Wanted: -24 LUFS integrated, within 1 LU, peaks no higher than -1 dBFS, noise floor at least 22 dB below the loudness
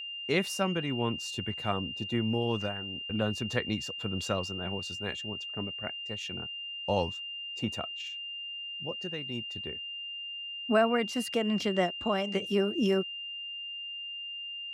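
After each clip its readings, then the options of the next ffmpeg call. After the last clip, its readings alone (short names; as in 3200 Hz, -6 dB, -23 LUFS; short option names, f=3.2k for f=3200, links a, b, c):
steady tone 2800 Hz; tone level -37 dBFS; loudness -32.0 LUFS; peak -12.0 dBFS; loudness target -24.0 LUFS
-> -af "bandreject=f=2.8k:w=30"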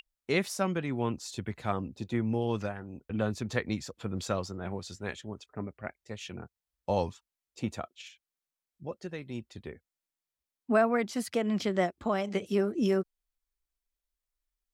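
steady tone none; loudness -32.5 LUFS; peak -12.0 dBFS; loudness target -24.0 LUFS
-> -af "volume=8.5dB"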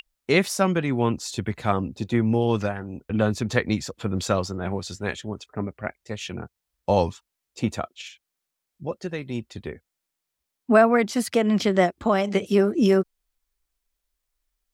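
loudness -24.0 LUFS; peak -3.5 dBFS; noise floor -83 dBFS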